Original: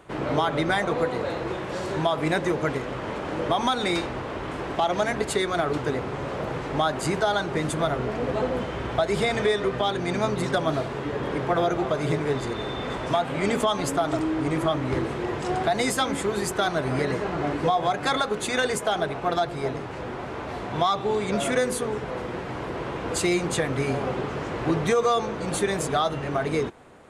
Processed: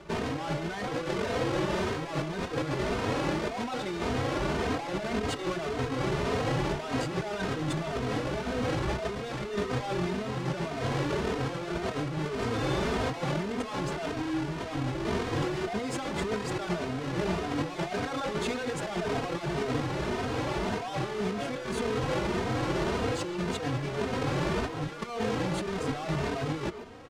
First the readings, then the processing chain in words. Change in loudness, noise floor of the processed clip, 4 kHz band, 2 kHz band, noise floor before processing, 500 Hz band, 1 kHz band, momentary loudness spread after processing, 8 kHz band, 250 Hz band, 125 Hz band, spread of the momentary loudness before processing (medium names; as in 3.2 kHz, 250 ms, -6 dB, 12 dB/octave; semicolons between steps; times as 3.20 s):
-5.5 dB, -37 dBFS, -6.0 dB, -5.5 dB, -34 dBFS, -6.5 dB, -7.5 dB, 4 LU, -8.5 dB, -3.5 dB, -2.0 dB, 7 LU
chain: square wave that keeps the level; compressor with a negative ratio -26 dBFS, ratio -1; distance through air 78 m; speakerphone echo 140 ms, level -8 dB; endless flanger 3 ms +1.8 Hz; trim -2.5 dB